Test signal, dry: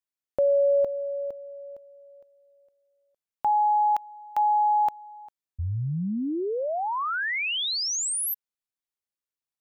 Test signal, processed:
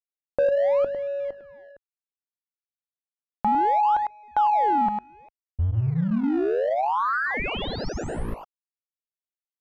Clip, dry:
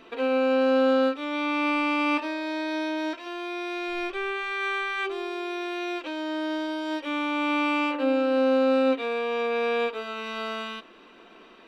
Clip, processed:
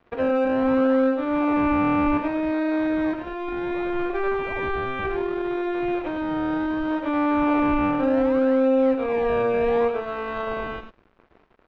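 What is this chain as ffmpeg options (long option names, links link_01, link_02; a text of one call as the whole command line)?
ffmpeg -i in.wav -filter_complex "[0:a]bandreject=frequency=50:width_type=h:width=6,bandreject=frequency=100:width_type=h:width=6,bandreject=frequency=150:width_type=h:width=6,bandreject=frequency=200:width_type=h:width=6,bandreject=frequency=250:width_type=h:width=6,asplit=2[link_01][link_02];[link_02]aecho=0:1:102:0.447[link_03];[link_01][link_03]amix=inputs=2:normalize=0,aeval=exprs='sgn(val(0))*max(abs(val(0))-0.00473,0)':channel_layout=same,asplit=2[link_04][link_05];[link_05]acrusher=samples=28:mix=1:aa=0.000001:lfo=1:lforange=28:lforate=0.66,volume=-7.5dB[link_06];[link_04][link_06]amix=inputs=2:normalize=0,asubboost=boost=2:cutoff=70,lowpass=1600,acompressor=threshold=-22dB:ratio=3:attack=1.2:release=585:knee=6:detection=peak,volume=5.5dB" out.wav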